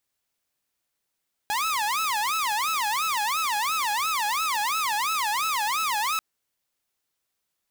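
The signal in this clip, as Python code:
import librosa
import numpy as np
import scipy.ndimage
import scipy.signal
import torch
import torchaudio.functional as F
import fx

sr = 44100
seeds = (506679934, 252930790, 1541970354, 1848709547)

y = fx.siren(sr, length_s=4.69, kind='wail', low_hz=825.0, high_hz=1310.0, per_s=2.9, wave='saw', level_db=-21.0)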